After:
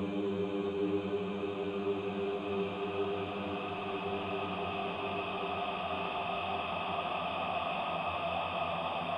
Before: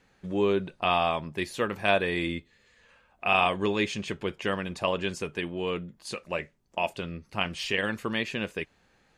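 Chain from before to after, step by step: compression, threshold -31 dBFS, peak gain reduction 12.5 dB; Paulstretch 16×, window 1.00 s, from 0.45 s

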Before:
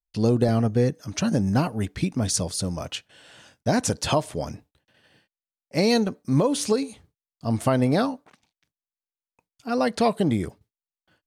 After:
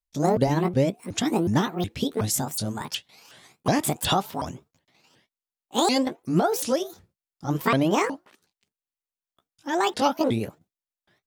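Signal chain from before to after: sawtooth pitch modulation +10.5 st, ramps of 368 ms; dynamic bell 3.4 kHz, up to +6 dB, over -49 dBFS, Q 2.2

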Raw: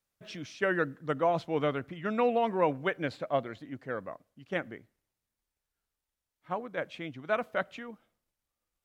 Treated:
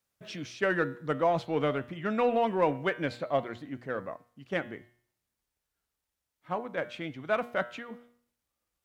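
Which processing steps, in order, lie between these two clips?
high-pass 41 Hz; de-hum 119.8 Hz, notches 39; in parallel at -9 dB: saturation -31.5 dBFS, distortion -7 dB

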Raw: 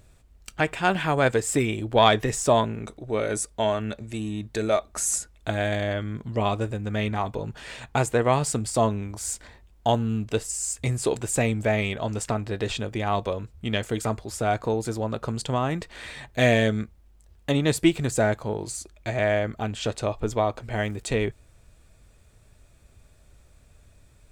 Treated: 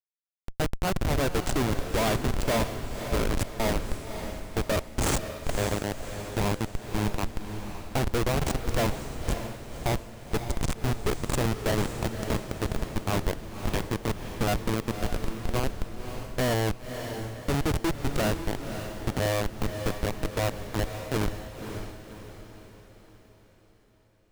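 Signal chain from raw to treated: Schmitt trigger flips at -21 dBFS; echo that smears into a reverb 555 ms, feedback 47%, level -8 dB; trim +2 dB

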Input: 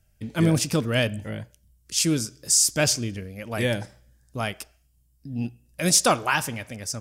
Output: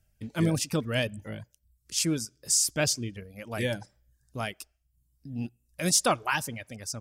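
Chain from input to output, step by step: reverb removal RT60 0.53 s; trim -4.5 dB

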